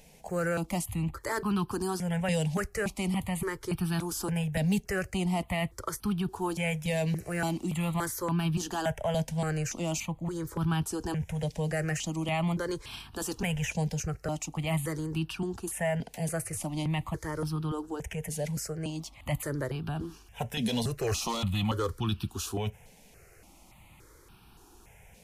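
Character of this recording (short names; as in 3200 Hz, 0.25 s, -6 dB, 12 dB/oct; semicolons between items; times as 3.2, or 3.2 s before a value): notches that jump at a steady rate 3.5 Hz 340–2000 Hz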